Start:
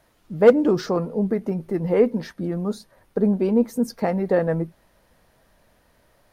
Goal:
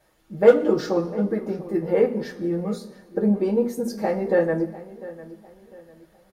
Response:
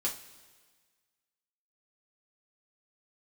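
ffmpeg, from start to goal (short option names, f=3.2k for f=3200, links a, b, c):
-filter_complex "[0:a]asplit=2[a][b];[b]adelay=700,lowpass=f=3.2k:p=1,volume=-17dB,asplit=2[c][d];[d]adelay=700,lowpass=f=3.2k:p=1,volume=0.36,asplit=2[e][f];[f]adelay=700,lowpass=f=3.2k:p=1,volume=0.36[g];[a][c][e][g]amix=inputs=4:normalize=0[h];[1:a]atrim=start_sample=2205,asetrate=66150,aresample=44100[i];[h][i]afir=irnorm=-1:irlink=0,volume=-1dB"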